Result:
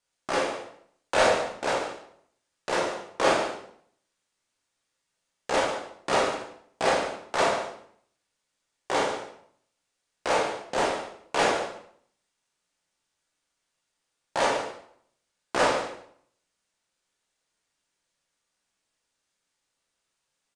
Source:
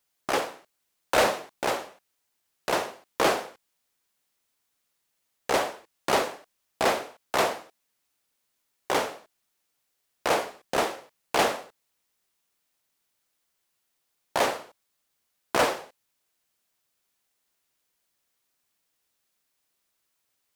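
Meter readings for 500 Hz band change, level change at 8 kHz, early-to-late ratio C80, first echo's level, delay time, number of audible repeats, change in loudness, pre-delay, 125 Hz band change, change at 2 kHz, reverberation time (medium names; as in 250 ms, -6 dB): +1.5 dB, -1.0 dB, 7.5 dB, -11.0 dB, 143 ms, 1, +0.5 dB, 14 ms, +0.5 dB, +1.0 dB, 0.65 s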